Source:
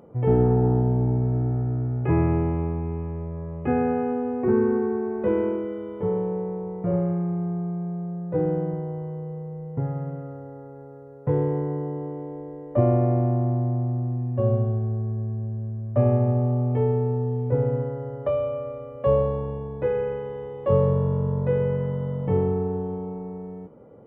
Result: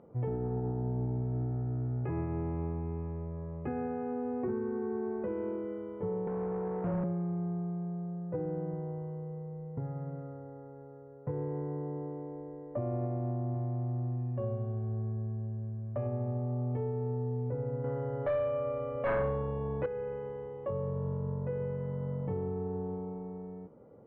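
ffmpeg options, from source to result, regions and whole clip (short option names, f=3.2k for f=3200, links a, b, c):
-filter_complex "[0:a]asettb=1/sr,asplit=3[a][b][c];[a]atrim=end=6.274[d];[b]atrim=start=6.27:end=7.04,asetpts=PTS-STARTPTS,afade=t=in:d=0.004:c=qsin,afade=t=out:st=0.766:d=0.004:c=qsin,acrossover=split=210|3000[e][f][g];[f]acompressor=threshold=-36dB:ratio=6:attack=3.2:release=140:knee=2.83:detection=peak[h];[e][h][g]amix=inputs=3:normalize=0,asplit=2[i][j];[j]highpass=f=720:p=1,volume=24dB,asoftclip=type=tanh:threshold=-17.5dB[k];[i][k]amix=inputs=2:normalize=0,lowpass=f=2.1k:p=1,volume=-6dB[l];[c]atrim=start=7.036[m];[d][l]acrossfade=d=0.004:c1=hsin:c2=qsin[n];[n][m]acrossfade=d=0.004:c1=qsin:c2=hsin,asettb=1/sr,asplit=3[o][p][q];[o]atrim=end=13.544[r];[p]atrim=start=13.54:end=16.07,asetpts=PTS-STARTPTS,afade=t=in:d=0.004:c=qsin,afade=t=out:st=2.526:d=0.004:c=qsin,highshelf=f=2.6k:g=11,bandreject=f=50:t=h:w=6,bandreject=f=100:t=h:w=6,bandreject=f=150:t=h:w=6,bandreject=f=200:t=h:w=6,bandreject=f=250:t=h:w=6,bandreject=f=300:t=h:w=6[s];[q]atrim=start=16.066[t];[r][s]acrossfade=d=0.004:c1=hsin:c2=qsin[u];[u][t]acrossfade=d=0.004:c1=qsin:c2=hsin,asettb=1/sr,asplit=3[v][w][x];[v]atrim=end=17.844[y];[w]atrim=start=17.84:end=19.86,asetpts=PTS-STARTPTS,afade=t=in:d=0.004:c=qsin,afade=t=out:st=2.016:d=0.004:c=qsin,tiltshelf=f=1.5k:g=-4,aeval=exprs='0.266*sin(PI/2*2.82*val(0)/0.266)':c=same[z];[x]atrim=start=19.856[aa];[y][z]acrossfade=d=0.004:c1=hsin:c2=qsin[ab];[ab][aa]acrossfade=d=0.004:c1=qsin:c2=hsin,alimiter=limit=-19dB:level=0:latency=1:release=396,lowpass=2.3k,volume=-7dB"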